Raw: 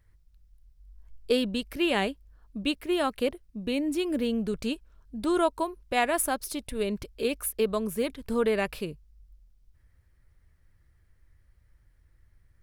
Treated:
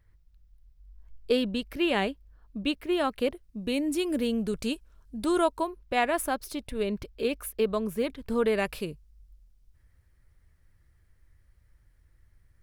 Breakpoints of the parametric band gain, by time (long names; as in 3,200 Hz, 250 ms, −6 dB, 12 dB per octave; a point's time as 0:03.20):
parametric band 9,900 Hz 1.6 octaves
0:03.10 −6 dB
0:03.76 +4.5 dB
0:05.29 +4.5 dB
0:05.80 −7 dB
0:08.23 −7 dB
0:08.65 +2 dB